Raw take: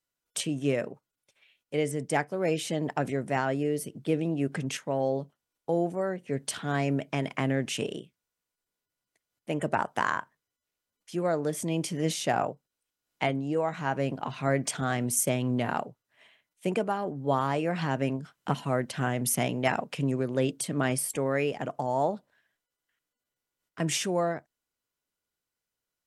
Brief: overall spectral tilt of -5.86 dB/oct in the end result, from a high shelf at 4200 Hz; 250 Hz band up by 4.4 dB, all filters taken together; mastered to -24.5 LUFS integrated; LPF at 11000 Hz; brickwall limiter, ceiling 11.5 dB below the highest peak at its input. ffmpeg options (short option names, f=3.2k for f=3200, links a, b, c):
-af "lowpass=11k,equalizer=f=250:t=o:g=5.5,highshelf=f=4.2k:g=-7.5,volume=7.5dB,alimiter=limit=-13.5dB:level=0:latency=1"